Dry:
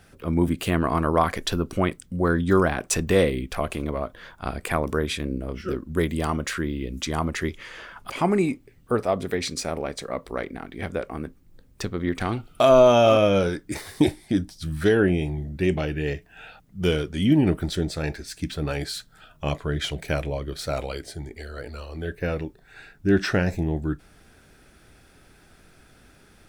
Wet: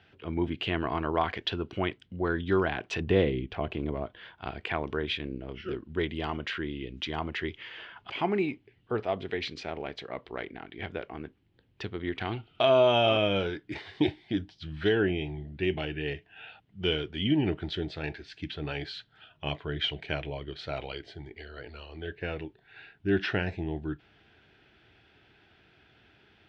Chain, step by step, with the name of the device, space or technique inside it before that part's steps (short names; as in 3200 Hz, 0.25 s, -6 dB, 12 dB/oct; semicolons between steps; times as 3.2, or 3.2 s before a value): 3–4.06 tilt shelf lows +5.5 dB, about 810 Hz; guitar cabinet (speaker cabinet 99–3800 Hz, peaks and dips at 170 Hz -8 dB, 250 Hz -7 dB, 540 Hz -8 dB, 1200 Hz -7 dB, 3000 Hz +7 dB); gain -3.5 dB